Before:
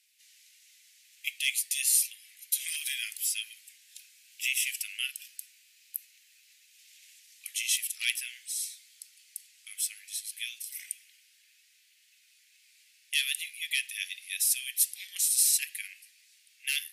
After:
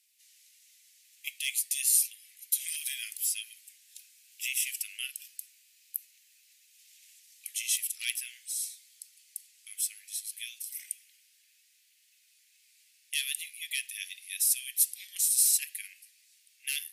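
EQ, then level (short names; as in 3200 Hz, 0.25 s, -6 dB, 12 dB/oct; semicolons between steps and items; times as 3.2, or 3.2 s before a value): high shelf 5200 Hz +8.5 dB; -6.5 dB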